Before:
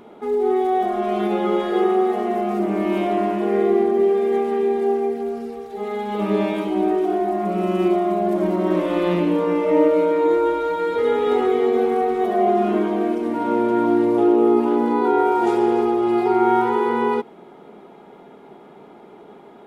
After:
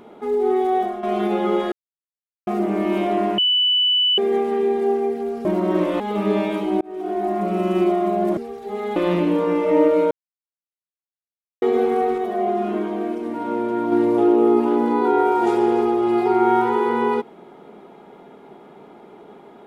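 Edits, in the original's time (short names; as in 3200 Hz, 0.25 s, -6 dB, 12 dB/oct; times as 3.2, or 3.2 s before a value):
0.78–1.03 fade out, to -11 dB
1.72–2.47 mute
3.38–4.18 bleep 2980 Hz -14.5 dBFS
5.45–6.04 swap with 8.41–8.96
6.85–7.33 fade in
10.11–11.62 mute
12.18–13.92 gain -4 dB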